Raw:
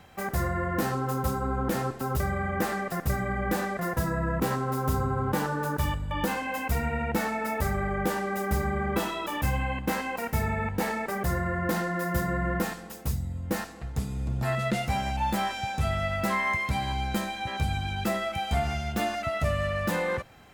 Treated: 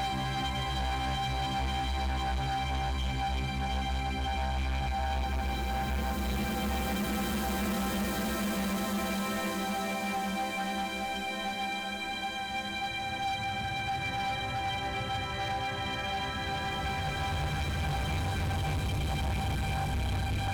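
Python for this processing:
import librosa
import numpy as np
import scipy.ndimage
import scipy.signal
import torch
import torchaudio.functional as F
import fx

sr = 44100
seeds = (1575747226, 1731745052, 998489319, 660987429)

y = fx.paulstretch(x, sr, seeds[0], factor=24.0, window_s=0.25, from_s=16.85)
y = fx.echo_diffused(y, sr, ms=620, feedback_pct=49, wet_db=-10.5)
y = np.clip(y, -10.0 ** (-28.5 / 20.0), 10.0 ** (-28.5 / 20.0))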